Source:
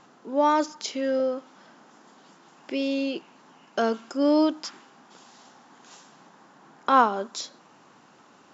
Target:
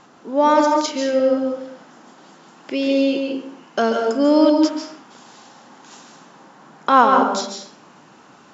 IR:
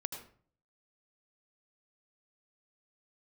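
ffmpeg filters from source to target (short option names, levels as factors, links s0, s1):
-filter_complex "[1:a]atrim=start_sample=2205,afade=t=out:st=0.33:d=0.01,atrim=end_sample=14994,asetrate=24696,aresample=44100[s0];[0:a][s0]afir=irnorm=-1:irlink=0,volume=1.58"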